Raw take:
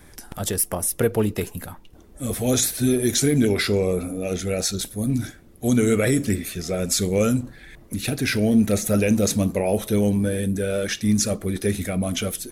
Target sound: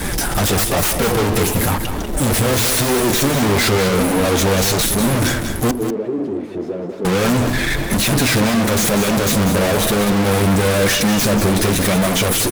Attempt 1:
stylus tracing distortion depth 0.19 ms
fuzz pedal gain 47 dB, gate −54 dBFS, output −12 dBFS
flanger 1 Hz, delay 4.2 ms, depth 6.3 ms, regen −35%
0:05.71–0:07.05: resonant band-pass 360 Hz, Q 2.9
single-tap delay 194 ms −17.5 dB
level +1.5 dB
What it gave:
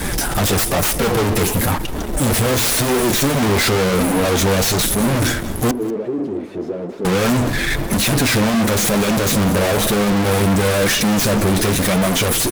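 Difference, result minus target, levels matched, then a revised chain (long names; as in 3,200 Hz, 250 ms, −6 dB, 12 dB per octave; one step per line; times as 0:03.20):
echo-to-direct −9 dB
stylus tracing distortion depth 0.19 ms
fuzz pedal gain 47 dB, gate −54 dBFS, output −12 dBFS
flanger 1 Hz, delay 4.2 ms, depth 6.3 ms, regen −35%
0:05.71–0:07.05: resonant band-pass 360 Hz, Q 2.9
single-tap delay 194 ms −8.5 dB
level +1.5 dB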